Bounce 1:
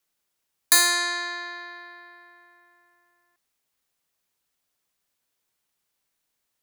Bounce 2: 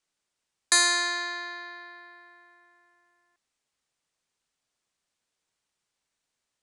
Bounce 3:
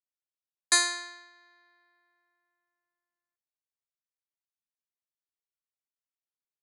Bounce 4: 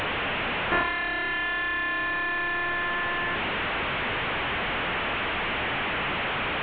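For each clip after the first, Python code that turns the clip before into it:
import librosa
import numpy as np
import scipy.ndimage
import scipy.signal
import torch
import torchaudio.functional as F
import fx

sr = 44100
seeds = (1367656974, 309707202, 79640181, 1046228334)

y1 = scipy.signal.sosfilt(scipy.signal.butter(6, 9200.0, 'lowpass', fs=sr, output='sos'), x)
y1 = y1 * 10.0 ** (-1.5 / 20.0)
y2 = fx.upward_expand(y1, sr, threshold_db=-34.0, expansion=2.5)
y3 = fx.delta_mod(y2, sr, bps=16000, step_db=-25.0)
y3 = y3 * 10.0 ** (4.0 / 20.0)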